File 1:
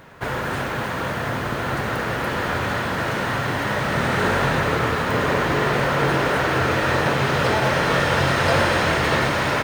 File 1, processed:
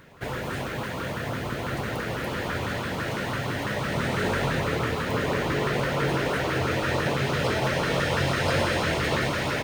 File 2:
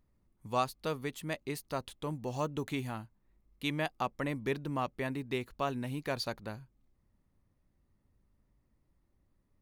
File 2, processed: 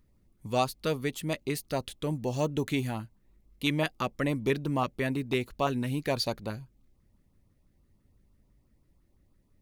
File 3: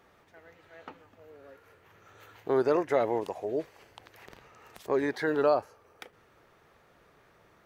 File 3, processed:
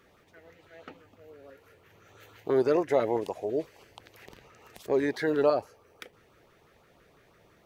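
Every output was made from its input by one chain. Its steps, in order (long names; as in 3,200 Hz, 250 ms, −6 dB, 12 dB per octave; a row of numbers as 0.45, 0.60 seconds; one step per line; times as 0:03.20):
auto-filter notch saw up 6 Hz 670–2,000 Hz
normalise the peak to −12 dBFS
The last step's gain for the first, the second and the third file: −4.0, +6.5, +2.0 decibels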